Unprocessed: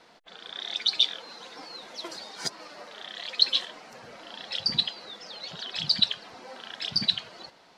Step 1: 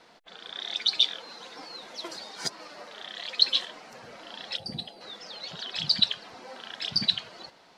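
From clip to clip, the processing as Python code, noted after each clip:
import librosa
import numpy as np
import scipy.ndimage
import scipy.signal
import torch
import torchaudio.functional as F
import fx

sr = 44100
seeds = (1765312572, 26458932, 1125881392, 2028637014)

y = fx.spec_box(x, sr, start_s=4.57, length_s=0.44, low_hz=880.0, high_hz=8000.0, gain_db=-12)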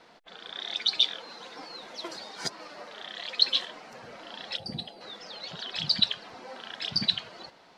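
y = fx.high_shelf(x, sr, hz=4900.0, db=-5.5)
y = y * 10.0 ** (1.0 / 20.0)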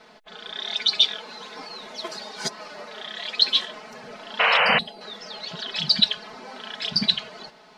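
y = x + 0.71 * np.pad(x, (int(4.7 * sr / 1000.0), 0))[:len(x)]
y = fx.spec_paint(y, sr, seeds[0], shape='noise', start_s=4.39, length_s=0.4, low_hz=440.0, high_hz=3100.0, level_db=-22.0)
y = y * 10.0 ** (3.5 / 20.0)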